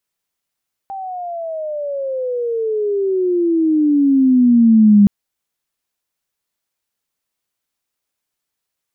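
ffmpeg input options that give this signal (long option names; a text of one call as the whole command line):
ffmpeg -f lavfi -i "aevalsrc='pow(10,(-24.5+19.5*t/4.17)/20)*sin(2*PI*790*4.17/log(200/790)*(exp(log(200/790)*t/4.17)-1))':duration=4.17:sample_rate=44100" out.wav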